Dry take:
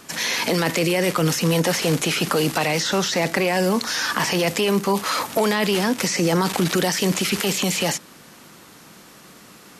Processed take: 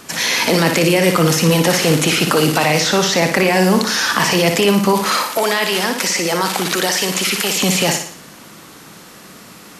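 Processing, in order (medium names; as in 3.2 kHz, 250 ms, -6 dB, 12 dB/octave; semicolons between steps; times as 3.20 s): 5.17–7.57 s: high-pass 620 Hz 6 dB/octave; flutter echo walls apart 10.1 m, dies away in 0.53 s; trim +5.5 dB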